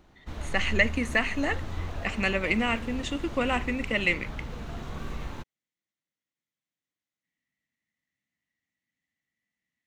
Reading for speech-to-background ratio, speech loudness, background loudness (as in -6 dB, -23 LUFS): 10.5 dB, -28.0 LUFS, -38.5 LUFS